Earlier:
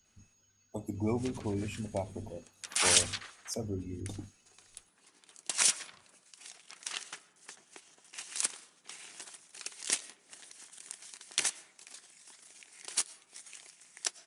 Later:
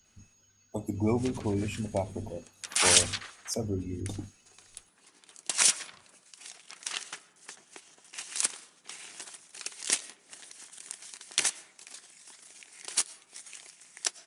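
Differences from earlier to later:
speech +4.5 dB; background +3.5 dB

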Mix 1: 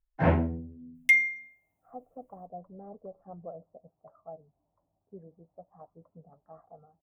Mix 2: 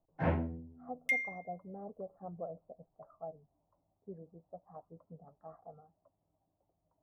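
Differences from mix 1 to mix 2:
speech: entry -1.05 s; first sound -8.0 dB; second sound -11.0 dB

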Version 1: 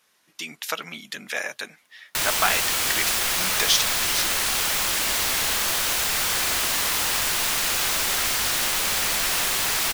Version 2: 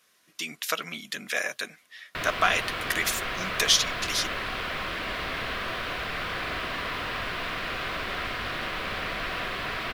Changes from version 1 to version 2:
background: add distance through air 410 m; master: add Butterworth band-stop 860 Hz, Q 6.2

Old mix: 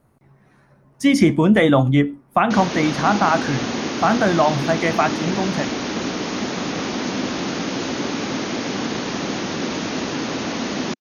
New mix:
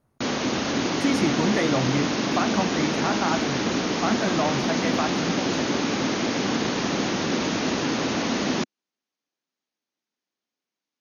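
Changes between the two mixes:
speech -9.5 dB; background: entry -2.30 s

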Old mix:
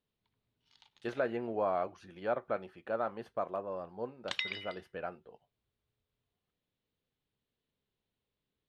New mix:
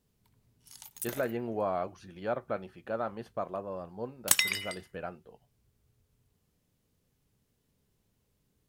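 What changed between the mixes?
background: remove four-pole ladder low-pass 4.4 kHz, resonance 50%; master: add tone controls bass +7 dB, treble +7 dB

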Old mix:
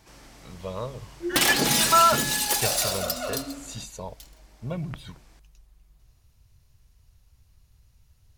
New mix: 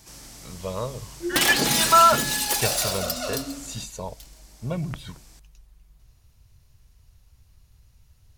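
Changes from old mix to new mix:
speech +3.0 dB; first sound: add tone controls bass +5 dB, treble +13 dB

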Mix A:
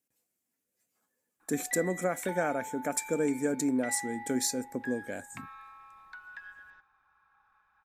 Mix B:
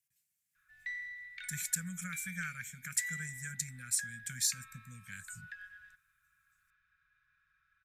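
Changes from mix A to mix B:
background: entry -0.85 s; master: add inverse Chebyshev band-stop 270–950 Hz, stop band 40 dB

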